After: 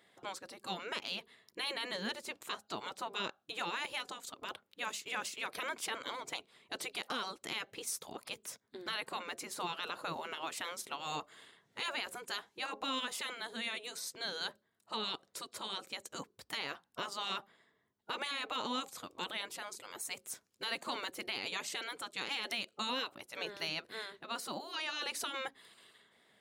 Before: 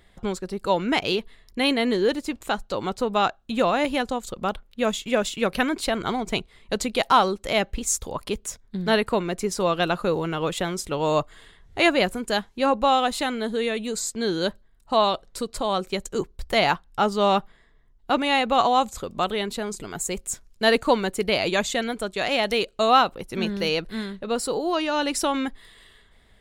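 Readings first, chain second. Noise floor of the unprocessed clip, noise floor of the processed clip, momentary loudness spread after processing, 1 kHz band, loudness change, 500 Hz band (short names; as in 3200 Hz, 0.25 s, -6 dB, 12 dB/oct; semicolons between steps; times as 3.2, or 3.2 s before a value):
-57 dBFS, -77 dBFS, 8 LU, -18.0 dB, -15.5 dB, -23.0 dB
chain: spectral gate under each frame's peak -10 dB weak; HPF 200 Hz 12 dB/oct; limiter -20.5 dBFS, peak gain reduction 11 dB; gain -6 dB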